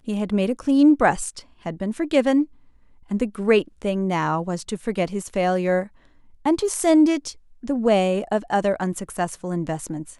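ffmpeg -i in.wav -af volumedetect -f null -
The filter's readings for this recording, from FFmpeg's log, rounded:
mean_volume: -22.1 dB
max_volume: -4.9 dB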